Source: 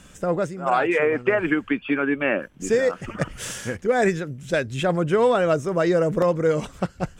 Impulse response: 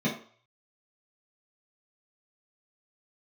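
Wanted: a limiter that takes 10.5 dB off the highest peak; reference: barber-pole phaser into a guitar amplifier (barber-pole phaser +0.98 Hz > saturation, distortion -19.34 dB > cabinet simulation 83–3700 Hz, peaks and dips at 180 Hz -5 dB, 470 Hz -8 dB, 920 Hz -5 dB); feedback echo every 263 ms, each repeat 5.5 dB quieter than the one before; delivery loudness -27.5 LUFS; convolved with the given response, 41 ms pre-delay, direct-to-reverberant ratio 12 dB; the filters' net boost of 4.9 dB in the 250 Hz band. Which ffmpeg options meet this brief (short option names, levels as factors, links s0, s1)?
-filter_complex "[0:a]equalizer=f=250:t=o:g=9,alimiter=limit=0.178:level=0:latency=1,aecho=1:1:263|526|789|1052|1315|1578|1841:0.531|0.281|0.149|0.079|0.0419|0.0222|0.0118,asplit=2[s0][s1];[1:a]atrim=start_sample=2205,adelay=41[s2];[s1][s2]afir=irnorm=-1:irlink=0,volume=0.0841[s3];[s0][s3]amix=inputs=2:normalize=0,asplit=2[s4][s5];[s5]afreqshift=0.98[s6];[s4][s6]amix=inputs=2:normalize=1,asoftclip=threshold=0.158,highpass=83,equalizer=f=180:t=q:w=4:g=-5,equalizer=f=470:t=q:w=4:g=-8,equalizer=f=920:t=q:w=4:g=-5,lowpass=f=3700:w=0.5412,lowpass=f=3700:w=1.3066,volume=1.12"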